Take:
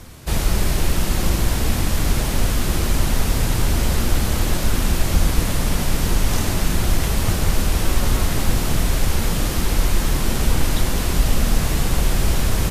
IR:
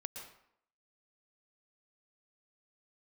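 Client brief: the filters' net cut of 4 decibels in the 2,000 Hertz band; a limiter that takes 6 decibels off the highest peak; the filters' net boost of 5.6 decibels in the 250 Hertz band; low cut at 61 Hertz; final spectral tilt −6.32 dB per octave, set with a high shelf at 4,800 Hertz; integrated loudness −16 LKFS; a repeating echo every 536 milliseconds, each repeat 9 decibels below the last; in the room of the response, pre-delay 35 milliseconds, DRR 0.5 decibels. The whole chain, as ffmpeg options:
-filter_complex "[0:a]highpass=61,equalizer=frequency=250:width_type=o:gain=7.5,equalizer=frequency=2000:width_type=o:gain=-4,highshelf=frequency=4800:gain=-7,alimiter=limit=-13dB:level=0:latency=1,aecho=1:1:536|1072|1608|2144:0.355|0.124|0.0435|0.0152,asplit=2[link_01][link_02];[1:a]atrim=start_sample=2205,adelay=35[link_03];[link_02][link_03]afir=irnorm=-1:irlink=0,volume=1.5dB[link_04];[link_01][link_04]amix=inputs=2:normalize=0,volume=3.5dB"

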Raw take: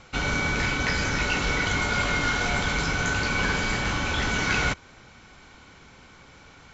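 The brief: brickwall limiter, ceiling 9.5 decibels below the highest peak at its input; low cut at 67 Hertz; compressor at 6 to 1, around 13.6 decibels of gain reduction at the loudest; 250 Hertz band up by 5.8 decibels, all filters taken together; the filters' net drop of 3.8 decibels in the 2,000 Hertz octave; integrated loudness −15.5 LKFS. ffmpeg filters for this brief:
ffmpeg -i in.wav -af "highpass=67,equalizer=frequency=250:width_type=o:gain=7.5,equalizer=frequency=2000:width_type=o:gain=-5.5,acompressor=threshold=-37dB:ratio=6,volume=27.5dB,alimiter=limit=-5.5dB:level=0:latency=1" out.wav

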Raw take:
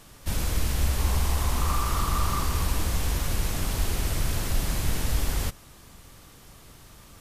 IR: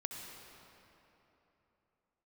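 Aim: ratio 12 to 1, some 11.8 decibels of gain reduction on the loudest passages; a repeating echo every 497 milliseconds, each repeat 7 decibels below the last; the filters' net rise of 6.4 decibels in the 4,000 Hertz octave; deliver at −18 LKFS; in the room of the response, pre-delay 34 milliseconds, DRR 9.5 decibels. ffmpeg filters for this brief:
-filter_complex "[0:a]equalizer=frequency=4000:width_type=o:gain=8,acompressor=threshold=-31dB:ratio=12,aecho=1:1:497|994|1491|1988|2485:0.447|0.201|0.0905|0.0407|0.0183,asplit=2[link_01][link_02];[1:a]atrim=start_sample=2205,adelay=34[link_03];[link_02][link_03]afir=irnorm=-1:irlink=0,volume=-9dB[link_04];[link_01][link_04]amix=inputs=2:normalize=0,volume=19dB"

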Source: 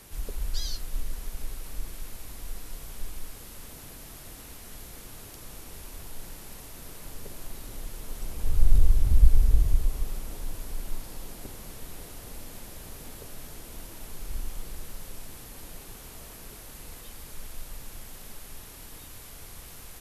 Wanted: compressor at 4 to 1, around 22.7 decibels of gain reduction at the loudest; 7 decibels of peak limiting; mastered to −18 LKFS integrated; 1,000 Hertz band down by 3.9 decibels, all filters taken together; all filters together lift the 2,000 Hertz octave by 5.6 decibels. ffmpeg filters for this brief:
ffmpeg -i in.wav -af "equalizer=frequency=1000:width_type=o:gain=-8,equalizer=frequency=2000:width_type=o:gain=9,acompressor=threshold=-38dB:ratio=4,volume=28dB,alimiter=limit=-5.5dB:level=0:latency=1" out.wav

